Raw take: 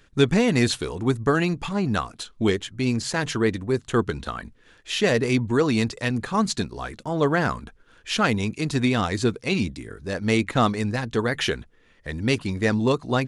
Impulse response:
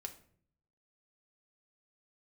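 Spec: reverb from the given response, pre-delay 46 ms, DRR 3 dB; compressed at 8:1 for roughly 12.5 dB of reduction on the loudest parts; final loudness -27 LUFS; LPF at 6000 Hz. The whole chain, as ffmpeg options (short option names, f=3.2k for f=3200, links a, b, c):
-filter_complex "[0:a]lowpass=6k,acompressor=threshold=-27dB:ratio=8,asplit=2[a][b];[1:a]atrim=start_sample=2205,adelay=46[c];[b][c]afir=irnorm=-1:irlink=0,volume=0.5dB[d];[a][d]amix=inputs=2:normalize=0,volume=3dB"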